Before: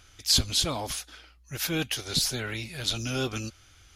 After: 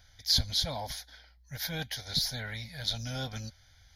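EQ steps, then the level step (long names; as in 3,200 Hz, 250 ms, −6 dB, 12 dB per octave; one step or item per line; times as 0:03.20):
phaser with its sweep stopped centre 1,800 Hz, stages 8
−2.0 dB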